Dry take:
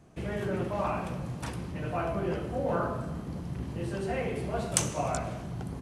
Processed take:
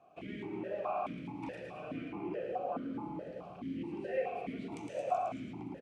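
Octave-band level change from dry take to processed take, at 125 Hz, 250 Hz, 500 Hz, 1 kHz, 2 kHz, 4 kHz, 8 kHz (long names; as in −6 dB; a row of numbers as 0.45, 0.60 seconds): −16.0 dB, −5.5 dB, −5.5 dB, −3.5 dB, −9.0 dB, −14.0 dB, below −25 dB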